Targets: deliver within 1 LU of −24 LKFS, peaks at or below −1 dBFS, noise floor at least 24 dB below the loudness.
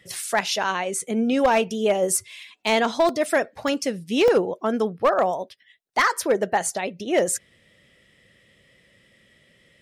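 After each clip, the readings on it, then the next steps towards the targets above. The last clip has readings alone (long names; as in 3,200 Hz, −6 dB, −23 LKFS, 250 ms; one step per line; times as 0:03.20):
share of clipped samples 0.5%; peaks flattened at −12.0 dBFS; number of dropouts 3; longest dropout 1.6 ms; integrated loudness −22.5 LKFS; sample peak −12.0 dBFS; target loudness −24.0 LKFS
→ clipped peaks rebuilt −12 dBFS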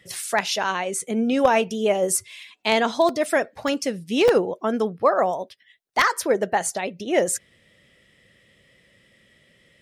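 share of clipped samples 0.0%; number of dropouts 3; longest dropout 1.6 ms
→ repair the gap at 0:03.09/0:03.68/0:04.28, 1.6 ms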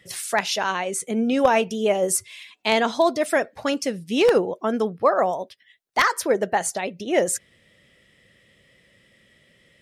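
number of dropouts 0; integrated loudness −22.5 LKFS; sample peak −3.0 dBFS; target loudness −24.0 LKFS
→ level −1.5 dB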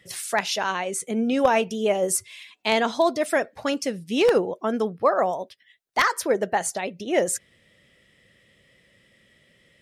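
integrated loudness −24.0 LKFS; sample peak −4.5 dBFS; background noise floor −61 dBFS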